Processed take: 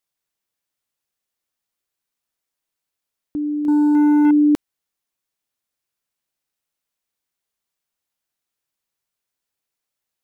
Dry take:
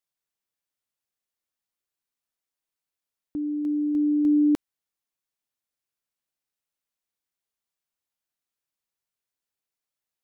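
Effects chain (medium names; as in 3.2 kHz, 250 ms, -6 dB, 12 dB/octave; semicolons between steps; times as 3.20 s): 3.68–4.31 s: waveshaping leveller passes 2; trim +5.5 dB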